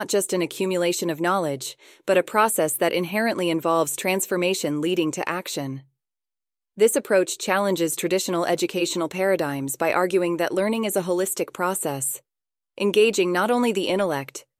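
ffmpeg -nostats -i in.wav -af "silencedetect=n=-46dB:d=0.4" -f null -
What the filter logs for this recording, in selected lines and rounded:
silence_start: 5.82
silence_end: 6.77 | silence_duration: 0.95
silence_start: 12.19
silence_end: 12.78 | silence_duration: 0.58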